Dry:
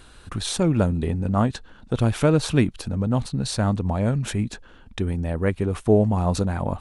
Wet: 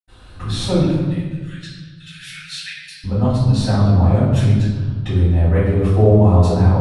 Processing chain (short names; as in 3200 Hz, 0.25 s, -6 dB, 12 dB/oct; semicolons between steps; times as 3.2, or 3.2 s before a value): 0.74–2.96 steep high-pass 1600 Hz 72 dB/oct; reverb RT60 1.4 s, pre-delay 77 ms, DRR -60 dB; gain -1.5 dB